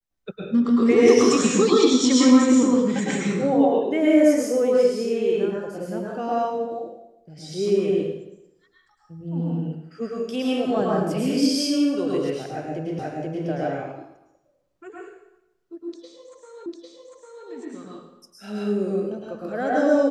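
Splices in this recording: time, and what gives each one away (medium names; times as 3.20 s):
12.99 s: repeat of the last 0.48 s
16.66 s: repeat of the last 0.8 s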